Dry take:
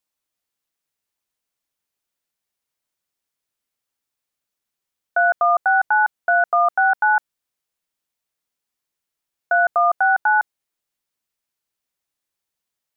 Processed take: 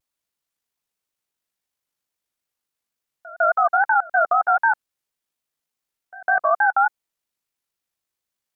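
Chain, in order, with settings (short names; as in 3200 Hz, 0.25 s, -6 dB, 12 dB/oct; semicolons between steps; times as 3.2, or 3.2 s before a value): wow and flutter 120 cents; pre-echo 0.234 s -21 dB; granular stretch 0.66×, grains 39 ms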